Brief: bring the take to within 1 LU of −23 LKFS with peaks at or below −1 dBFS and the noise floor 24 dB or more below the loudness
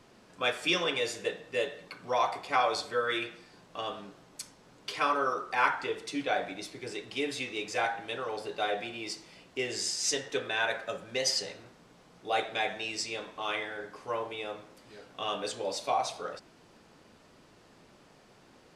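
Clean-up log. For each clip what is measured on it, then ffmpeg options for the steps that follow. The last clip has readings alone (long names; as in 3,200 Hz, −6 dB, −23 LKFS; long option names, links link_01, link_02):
integrated loudness −32.5 LKFS; sample peak −11.0 dBFS; target loudness −23.0 LKFS
→ -af "volume=9.5dB"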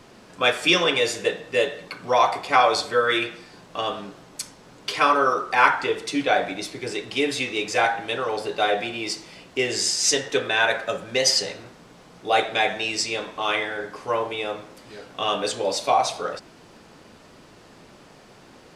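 integrated loudness −23.0 LKFS; sample peak −1.5 dBFS; background noise floor −50 dBFS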